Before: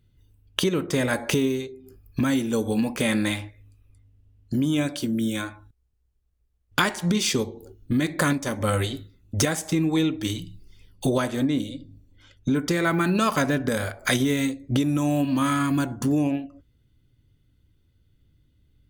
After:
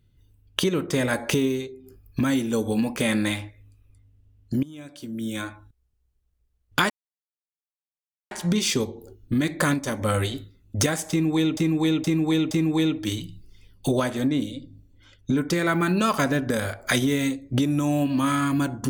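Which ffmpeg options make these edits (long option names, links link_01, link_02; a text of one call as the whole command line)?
ffmpeg -i in.wav -filter_complex "[0:a]asplit=6[link_01][link_02][link_03][link_04][link_05][link_06];[link_01]atrim=end=4.63,asetpts=PTS-STARTPTS,afade=type=out:start_time=4.626:duration=0.004:curve=hsin:silence=0.105925[link_07];[link_02]atrim=start=4.63:end=6.9,asetpts=PTS-STARTPTS,afade=type=in:duration=0.85:curve=qua:silence=0.105925,afade=type=out:start_time=2.266:duration=0.004:curve=hsin,apad=pad_dur=1.41[link_08];[link_03]atrim=start=6.9:end=10.162,asetpts=PTS-STARTPTS,afade=type=in:duration=0.004:curve=hsin[link_09];[link_04]atrim=start=9.688:end=10.162[link_10];[link_05]atrim=start=9.688:end=10.162[link_11];[link_06]atrim=start=9.688[link_12];[link_07][link_08][link_09]concat=n=3:v=0:a=1[link_13];[link_13][link_10]acrossfade=duration=0.004:curve1=hsin:curve2=hsin[link_14];[link_14][link_11]acrossfade=duration=0.004:curve1=hsin:curve2=hsin[link_15];[link_15][link_12]acrossfade=duration=0.004:curve1=hsin:curve2=hsin" out.wav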